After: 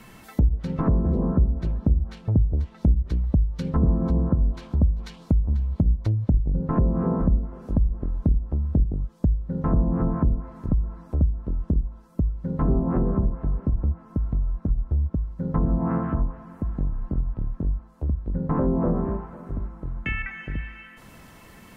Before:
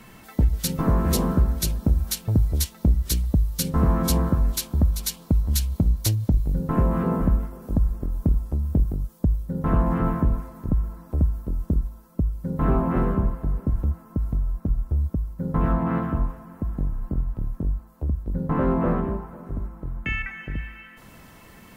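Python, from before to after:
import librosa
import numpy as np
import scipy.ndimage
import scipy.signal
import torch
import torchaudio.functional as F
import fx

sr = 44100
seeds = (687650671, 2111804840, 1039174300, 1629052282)

y = fx.high_shelf(x, sr, hz=2400.0, db=-10.0, at=(1.19, 2.56))
y = fx.env_lowpass_down(y, sr, base_hz=470.0, full_db=-16.5)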